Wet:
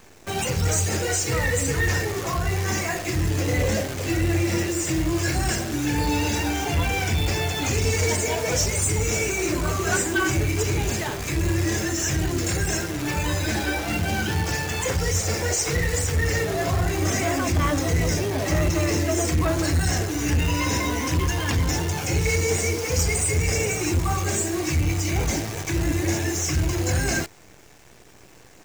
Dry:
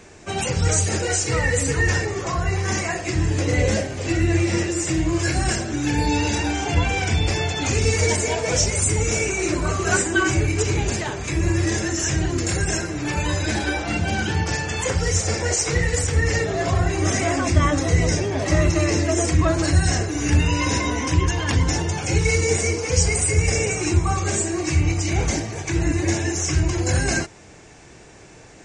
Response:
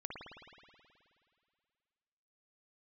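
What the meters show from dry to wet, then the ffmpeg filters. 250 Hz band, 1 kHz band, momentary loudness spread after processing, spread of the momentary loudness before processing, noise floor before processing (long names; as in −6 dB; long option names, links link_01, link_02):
−2.5 dB, −2.0 dB, 3 LU, 4 LU, −45 dBFS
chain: -af "acrusher=bits=6:dc=4:mix=0:aa=0.000001,aeval=exprs='0.596*(cos(1*acos(clip(val(0)/0.596,-1,1)))-cos(1*PI/2))+0.133*(cos(5*acos(clip(val(0)/0.596,-1,1)))-cos(5*PI/2))':channel_layout=same,volume=-7.5dB"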